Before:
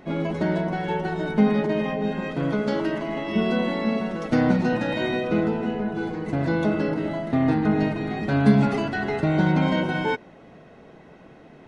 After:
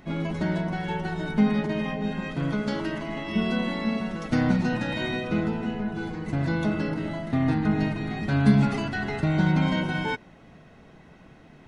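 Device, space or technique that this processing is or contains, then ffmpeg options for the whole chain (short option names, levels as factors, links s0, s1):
smiley-face EQ: -af "lowshelf=f=110:g=7,equalizer=f=470:t=o:w=1.5:g=-6.5,highshelf=f=5100:g=4.5,volume=0.841"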